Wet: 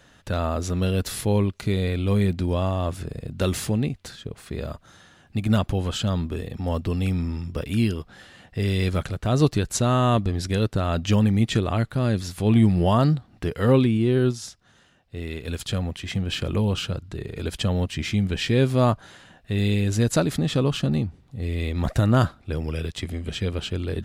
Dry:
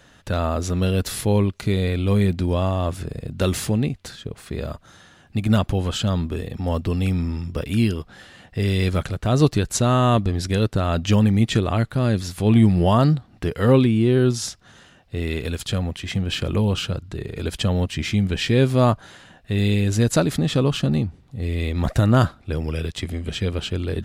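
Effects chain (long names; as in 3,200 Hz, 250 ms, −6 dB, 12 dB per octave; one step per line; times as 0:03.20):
0:13.97–0:15.48: expander for the loud parts 1.5 to 1, over −28 dBFS
level −2.5 dB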